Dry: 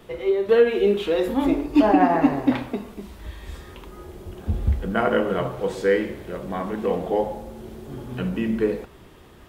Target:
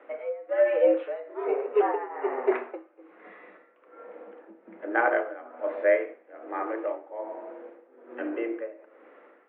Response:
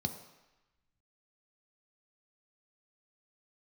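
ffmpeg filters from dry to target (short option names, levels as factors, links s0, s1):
-filter_complex "[0:a]highpass=f=200:t=q:w=0.5412,highpass=f=200:t=q:w=1.307,lowpass=f=2200:t=q:w=0.5176,lowpass=f=2200:t=q:w=0.7071,lowpass=f=2200:t=q:w=1.932,afreqshift=120,asplit=2[s0][s1];[1:a]atrim=start_sample=2205,asetrate=57330,aresample=44100[s2];[s1][s2]afir=irnorm=-1:irlink=0,volume=0.237[s3];[s0][s3]amix=inputs=2:normalize=0,tremolo=f=1.2:d=0.87"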